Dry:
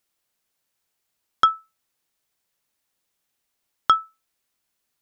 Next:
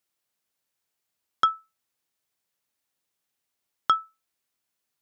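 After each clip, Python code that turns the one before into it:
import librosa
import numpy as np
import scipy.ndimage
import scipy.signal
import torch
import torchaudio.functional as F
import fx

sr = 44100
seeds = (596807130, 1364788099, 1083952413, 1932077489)

y = scipy.signal.sosfilt(scipy.signal.butter(2, 62.0, 'highpass', fs=sr, output='sos'), x)
y = F.gain(torch.from_numpy(y), -4.5).numpy()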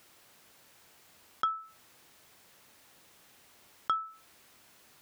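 y = fx.high_shelf(x, sr, hz=3700.0, db=-7.5)
y = fx.env_flatten(y, sr, amount_pct=50)
y = F.gain(torch.from_numpy(y), -8.5).numpy()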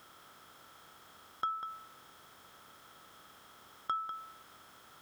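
y = fx.bin_compress(x, sr, power=0.6)
y = y + 10.0 ** (-9.0 / 20.0) * np.pad(y, (int(196 * sr / 1000.0), 0))[:len(y)]
y = F.gain(torch.from_numpy(y), -5.5).numpy()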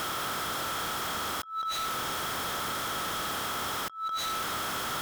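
y = fx.over_compress(x, sr, threshold_db=-47.0, ratio=-0.5)
y = fx.fold_sine(y, sr, drive_db=12, ceiling_db=-35.5)
y = F.gain(torch.from_numpy(y), 6.5).numpy()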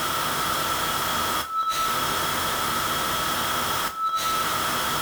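y = fx.rev_double_slope(x, sr, seeds[0], early_s=0.23, late_s=2.1, knee_db=-21, drr_db=2.5)
y = F.gain(torch.from_numpy(y), 5.5).numpy()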